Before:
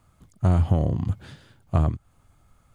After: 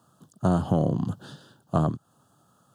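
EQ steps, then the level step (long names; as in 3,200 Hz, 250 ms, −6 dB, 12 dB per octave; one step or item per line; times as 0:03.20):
high-pass filter 140 Hz 24 dB per octave
Butterworth band-reject 2,200 Hz, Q 1.6
+3.0 dB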